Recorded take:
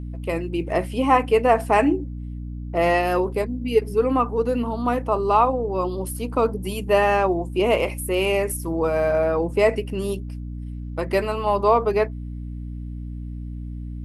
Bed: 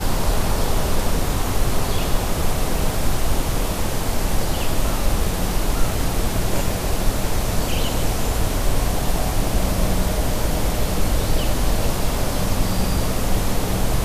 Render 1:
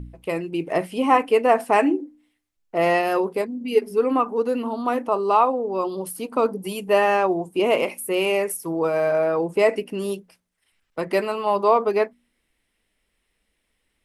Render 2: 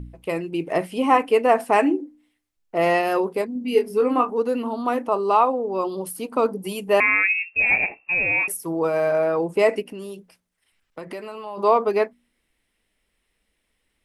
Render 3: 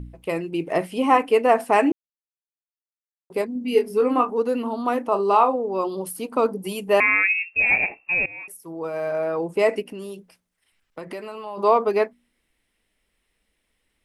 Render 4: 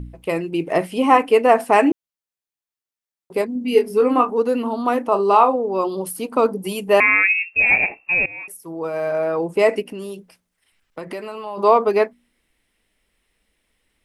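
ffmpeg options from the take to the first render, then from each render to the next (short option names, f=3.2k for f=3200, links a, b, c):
-af "bandreject=f=60:t=h:w=4,bandreject=f=120:t=h:w=4,bandreject=f=180:t=h:w=4,bandreject=f=240:t=h:w=4,bandreject=f=300:t=h:w=4"
-filter_complex "[0:a]asettb=1/sr,asplit=3[a][b][c];[a]atrim=end=3.534[d];[b]atrim=start=3.53:end=4.3,asetpts=PTS-STARTPTS,afade=t=in:d=0.004:c=qsin,afade=t=out:st=0.766:d=0.004:c=qsin,asplit=2[e][f];[f]adelay=24,volume=-6dB[g];[e][g]amix=inputs=2:normalize=0,atrim=end_sample=33957[h];[c]atrim=start=4.296[i];[d][h]acrossfade=d=0.004:c1=hsin:c2=qsin[j];[j][i]acrossfade=d=0.004:c1=qsin:c2=hsin,asettb=1/sr,asplit=3[k][l][m];[k]atrim=end=7.004[n];[l]atrim=start=7:end=8.48,asetpts=PTS-STARTPTS,afade=t=in:d=0.004:c=qsin,afade=t=out:st=1.476:d=0.004:c=qsin,lowpass=f=2.5k:t=q:w=0.5098,lowpass=f=2.5k:t=q:w=0.6013,lowpass=f=2.5k:t=q:w=0.9,lowpass=f=2.5k:t=q:w=2.563,afreqshift=-2900[o];[m]atrim=start=8.476[p];[n][o]acrossfade=d=0.004:c1=hsin:c2=qsin[q];[q][p]acrossfade=d=0.004:c1=qsin:c2=hsin,asplit=3[r][s][t];[r]afade=t=out:st=9.81:d=0.02[u];[s]acompressor=threshold=-32dB:ratio=4:attack=3.2:release=140:knee=1:detection=peak,afade=t=in:st=9.81:d=0.02,afade=t=out:st=11.57:d=0.02[v];[t]afade=t=in:st=11.57:d=0.02[w];[u][v][w]amix=inputs=3:normalize=0"
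-filter_complex "[0:a]asettb=1/sr,asplit=3[a][b][c];[a]atrim=end=5.064[d];[b]atrim=start=5.06:end=5.56,asetpts=PTS-STARTPTS,afade=t=in:d=0.004:c=qsin,afade=t=out:st=0.496:d=0.004:c=qsin,asplit=2[e][f];[f]adelay=35,volume=-10dB[g];[e][g]amix=inputs=2:normalize=0,atrim=end_sample=22050[h];[c]atrim=start=5.556[i];[d][h]acrossfade=d=0.004:c1=hsin:c2=qsin[j];[j][i]acrossfade=d=0.004:c1=qsin:c2=hsin,asplit=4[k][l][m][n];[k]atrim=end=1.92,asetpts=PTS-STARTPTS,afade=t=out:st=1.916:d=0.004:c=hsin[o];[l]atrim=start=1.92:end=3.3,asetpts=PTS-STARTPTS,volume=0[p];[m]atrim=start=3.3:end=8.26,asetpts=PTS-STARTPTS,afade=t=in:d=0.004:c=hsin,afade=t=out:st=4.956:d=0.004:c=hsin:silence=0.0944061[q];[n]atrim=start=8.26,asetpts=PTS-STARTPTS,afade=t=in:d=1.64:silence=0.0944061[r];[o][p][q][r]concat=n=4:v=0:a=1"
-af "volume=3.5dB"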